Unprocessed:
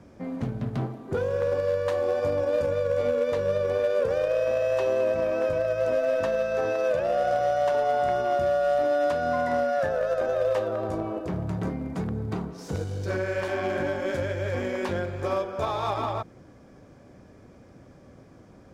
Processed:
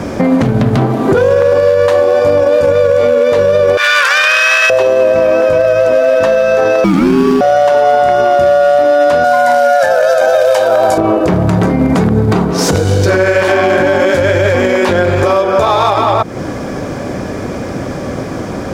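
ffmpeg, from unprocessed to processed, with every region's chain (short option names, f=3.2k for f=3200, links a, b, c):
-filter_complex "[0:a]asettb=1/sr,asplit=3[a][b][c];[a]atrim=end=3.774[d];[b]atrim=start=3.77:end=4.7,asetpts=PTS-STARTPTS,afade=t=in:d=0.004:c=qsin,afade=t=out:st=0.926:d=0.004:c=qsin,highpass=f=1.3k:w=0.5412,highpass=f=1.3k:w=1.3066,asplit=2[e][f];[f]highpass=f=720:p=1,volume=17dB,asoftclip=type=tanh:threshold=-16.5dB[g];[e][g]amix=inputs=2:normalize=0,lowpass=f=6.1k:p=1,volume=-6dB[h];[c]atrim=start=4.696[i];[d][h]acrossfade=d=0.004:c1=hsin:c2=qsin[j];[j][i]acrossfade=d=0.004:c1=qsin:c2=hsin,asettb=1/sr,asplit=3[k][l][m];[k]atrim=end=6.844[n];[l]atrim=start=6.84:end=7.41,asetpts=PTS-STARTPTS,afade=t=in:d=0.004:c=qsin,afade=t=out:st=0.566:d=0.004:c=qsin,aeval=exprs='sgn(val(0))*max(abs(val(0))-0.00473,0)':c=same,afreqshift=-320[o];[m]atrim=start=7.406[p];[n][o]acrossfade=d=0.004:c1=hsin:c2=qsin[q];[q][p]acrossfade=d=0.004:c1=qsin:c2=hsin,asettb=1/sr,asplit=3[r][s][t];[r]atrim=end=9.244[u];[s]atrim=start=9.24:end=10.98,asetpts=PTS-STARTPTS,afade=t=in:d=0.004:c=qsin,afade=t=out:st=1.736:d=0.004:c=qsin,bass=f=250:g=-14,treble=f=4k:g=9,aecho=1:1:1.3:0.59,atrim=end_sample=76734[v];[t]atrim=start=10.976[w];[u][v]acrossfade=d=0.004:c1=hsin:c2=qsin[x];[x][w]acrossfade=d=0.004:c1=qsin:c2=hsin,lowshelf=f=170:g=-7,acompressor=threshold=-39dB:ratio=4,alimiter=level_in=34dB:limit=-1dB:release=50:level=0:latency=1,volume=-1dB"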